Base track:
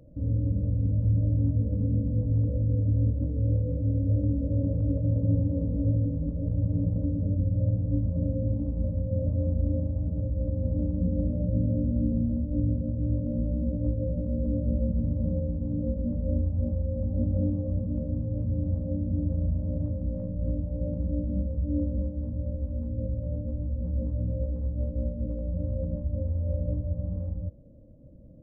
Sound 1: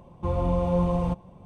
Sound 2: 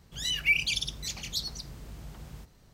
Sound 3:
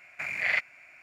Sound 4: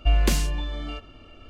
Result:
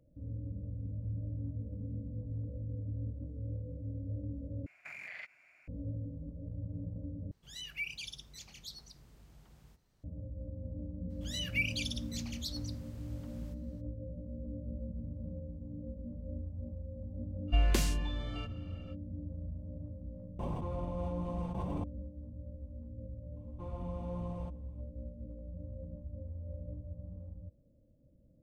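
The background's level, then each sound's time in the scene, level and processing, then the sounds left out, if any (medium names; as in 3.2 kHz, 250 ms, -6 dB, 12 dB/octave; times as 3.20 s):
base track -14.5 dB
4.66 s: replace with 3 -11 dB + compression, threshold -31 dBFS
7.31 s: replace with 2 -14.5 dB
11.09 s: add 2 -8.5 dB, fades 0.02 s
17.47 s: add 4 -7.5 dB, fades 0.05 s
20.39 s: add 1 -16.5 dB + level flattener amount 100%
23.36 s: add 1 -17.5 dB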